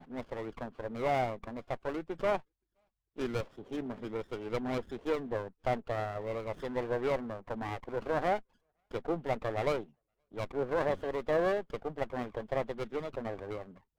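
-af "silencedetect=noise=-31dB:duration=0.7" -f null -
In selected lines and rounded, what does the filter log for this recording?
silence_start: 2.37
silence_end: 3.20 | silence_duration: 0.83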